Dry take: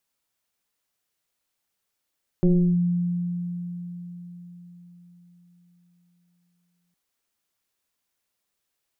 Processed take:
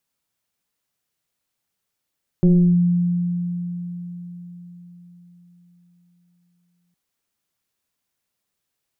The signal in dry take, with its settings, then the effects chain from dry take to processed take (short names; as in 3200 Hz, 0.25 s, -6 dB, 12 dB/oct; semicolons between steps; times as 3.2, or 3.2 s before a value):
FM tone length 4.51 s, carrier 175 Hz, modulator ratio 1.05, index 1, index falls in 0.34 s linear, decay 4.68 s, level -14 dB
bell 140 Hz +6 dB 1.6 oct